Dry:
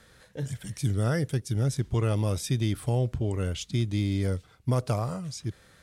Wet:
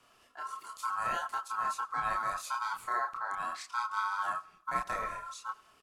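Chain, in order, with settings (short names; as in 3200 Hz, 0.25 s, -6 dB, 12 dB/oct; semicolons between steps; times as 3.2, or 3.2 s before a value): ring modulator 1200 Hz; chorus voices 6, 0.49 Hz, delay 29 ms, depth 4.6 ms; feedback echo 95 ms, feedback 43%, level -22.5 dB; gain -2 dB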